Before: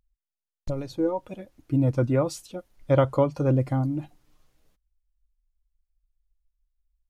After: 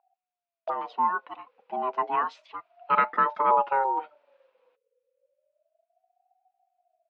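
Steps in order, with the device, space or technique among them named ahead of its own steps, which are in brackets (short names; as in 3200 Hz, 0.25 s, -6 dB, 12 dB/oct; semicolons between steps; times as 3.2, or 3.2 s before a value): 1.37–3.26 bell 160 Hz -6.5 dB 2 oct; voice changer toy (ring modulator with a swept carrier 620 Hz, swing 20%, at 0.31 Hz; speaker cabinet 460–3600 Hz, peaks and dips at 960 Hz +8 dB, 1400 Hz +6 dB, 2500 Hz +8 dB)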